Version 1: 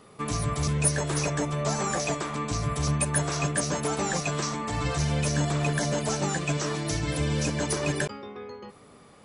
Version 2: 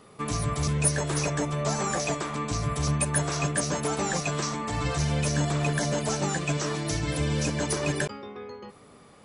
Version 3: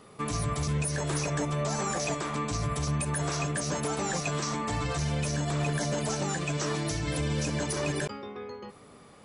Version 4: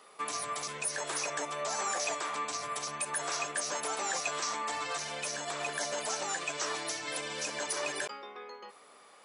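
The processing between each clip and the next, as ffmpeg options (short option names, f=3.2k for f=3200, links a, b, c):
-af anull
-af "alimiter=limit=-21dB:level=0:latency=1:release=61"
-af "highpass=650"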